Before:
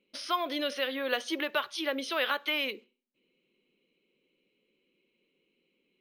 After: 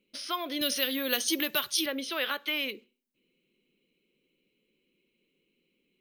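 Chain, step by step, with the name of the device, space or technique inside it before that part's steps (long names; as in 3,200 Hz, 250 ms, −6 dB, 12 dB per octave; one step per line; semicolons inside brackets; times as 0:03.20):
0:00.61–0:01.86: bass and treble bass +9 dB, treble +15 dB
smiley-face EQ (low-shelf EQ 170 Hz +7 dB; parametric band 820 Hz −5 dB 1.7 octaves; high-shelf EQ 9,400 Hz +7 dB)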